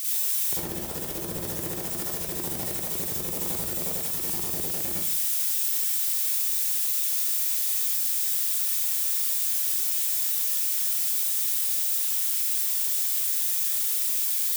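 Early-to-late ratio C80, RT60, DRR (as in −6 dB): 4.5 dB, 0.55 s, −6.5 dB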